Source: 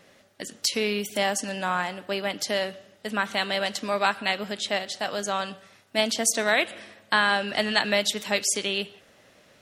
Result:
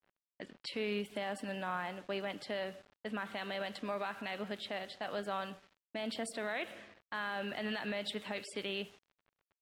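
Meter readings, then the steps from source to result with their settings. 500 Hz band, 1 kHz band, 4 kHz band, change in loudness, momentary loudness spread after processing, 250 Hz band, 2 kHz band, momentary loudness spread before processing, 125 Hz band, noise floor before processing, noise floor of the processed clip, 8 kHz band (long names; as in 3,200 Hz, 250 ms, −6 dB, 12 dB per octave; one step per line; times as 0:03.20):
−11.5 dB, −13.5 dB, −16.0 dB, −14.0 dB, 8 LU, −9.5 dB, −14.5 dB, 8 LU, −9.5 dB, −58 dBFS, below −85 dBFS, −25.0 dB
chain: noise gate with hold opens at −49 dBFS
moving average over 7 samples
brickwall limiter −19.5 dBFS, peak gain reduction 12 dB
centre clipping without the shift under −48.5 dBFS
low-pass that shuts in the quiet parts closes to 2,000 Hz, open at −29.5 dBFS
level −7.5 dB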